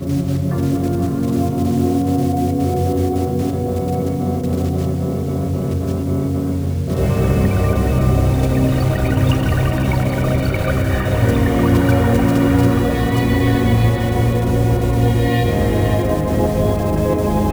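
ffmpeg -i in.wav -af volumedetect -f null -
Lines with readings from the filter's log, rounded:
mean_volume: -15.9 dB
max_volume: -1.9 dB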